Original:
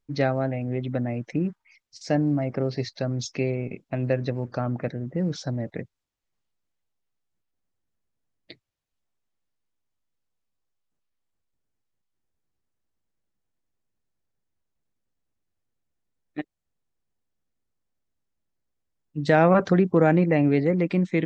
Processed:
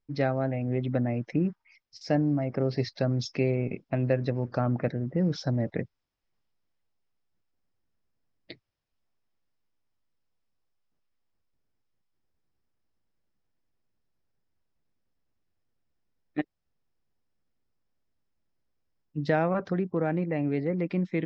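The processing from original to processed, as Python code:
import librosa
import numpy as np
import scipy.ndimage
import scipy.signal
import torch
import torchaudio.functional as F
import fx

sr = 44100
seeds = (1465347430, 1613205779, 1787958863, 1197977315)

y = fx.air_absorb(x, sr, metres=150.0)
y = fx.rider(y, sr, range_db=10, speed_s=0.5)
y = fx.peak_eq(y, sr, hz=5200.0, db=9.0, octaves=0.21)
y = y * 10.0 ** (-4.0 / 20.0)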